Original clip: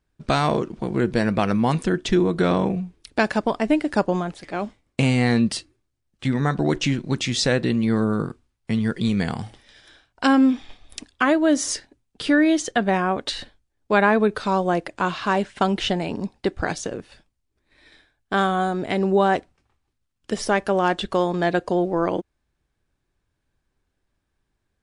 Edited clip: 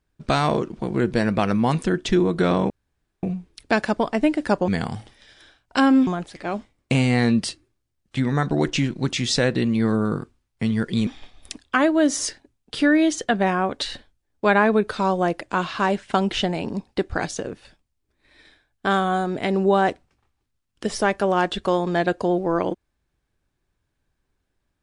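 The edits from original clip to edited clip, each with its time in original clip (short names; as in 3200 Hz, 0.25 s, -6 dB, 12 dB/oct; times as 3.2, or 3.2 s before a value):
2.7 insert room tone 0.53 s
9.15–10.54 move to 4.15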